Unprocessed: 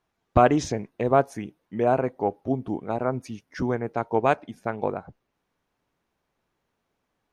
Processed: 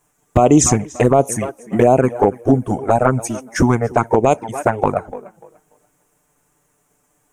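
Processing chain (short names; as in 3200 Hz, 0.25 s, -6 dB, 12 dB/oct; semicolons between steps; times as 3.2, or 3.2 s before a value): transient shaper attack +5 dB, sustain -1 dB; resonant high shelf 5800 Hz +11 dB, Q 3; tape echo 0.292 s, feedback 24%, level -18 dB, low-pass 4800 Hz; envelope flanger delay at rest 6.8 ms, full sweep at -15 dBFS; maximiser +15.5 dB; gain -1 dB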